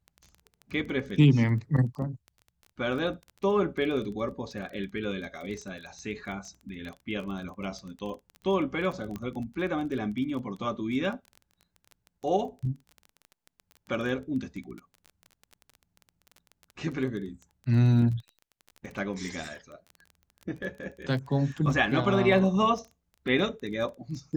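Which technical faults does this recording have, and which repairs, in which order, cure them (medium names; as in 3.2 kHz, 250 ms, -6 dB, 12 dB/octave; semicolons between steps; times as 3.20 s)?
crackle 20 per s -36 dBFS
9.16 s: pop -23 dBFS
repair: de-click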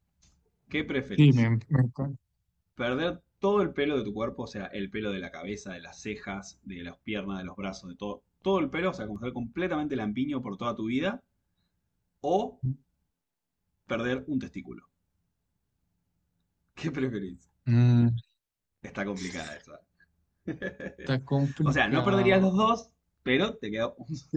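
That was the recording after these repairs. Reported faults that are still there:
9.16 s: pop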